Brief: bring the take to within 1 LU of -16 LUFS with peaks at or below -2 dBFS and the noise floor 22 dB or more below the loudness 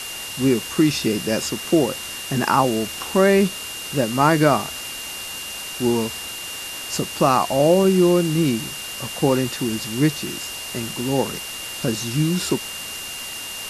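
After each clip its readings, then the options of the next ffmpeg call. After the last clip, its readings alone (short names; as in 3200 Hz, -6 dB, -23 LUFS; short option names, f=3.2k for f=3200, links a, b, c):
steady tone 2800 Hz; tone level -33 dBFS; noise floor -32 dBFS; noise floor target -44 dBFS; loudness -21.5 LUFS; peak -3.0 dBFS; loudness target -16.0 LUFS
-> -af "bandreject=f=2.8k:w=30"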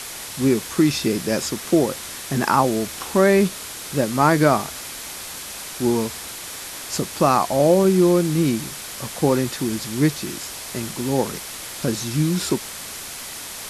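steady tone none; noise floor -34 dBFS; noise floor target -44 dBFS
-> -af "afftdn=nr=10:nf=-34"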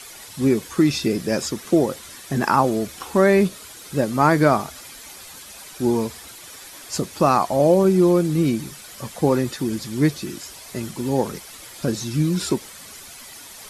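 noise floor -41 dBFS; noise floor target -43 dBFS
-> -af "afftdn=nr=6:nf=-41"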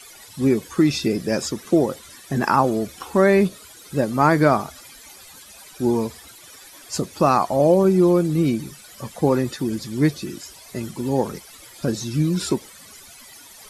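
noise floor -45 dBFS; loudness -21.0 LUFS; peak -3.0 dBFS; loudness target -16.0 LUFS
-> -af "volume=5dB,alimiter=limit=-2dB:level=0:latency=1"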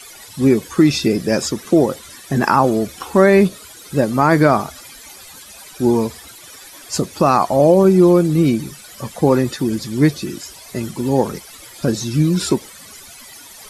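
loudness -16.5 LUFS; peak -2.0 dBFS; noise floor -40 dBFS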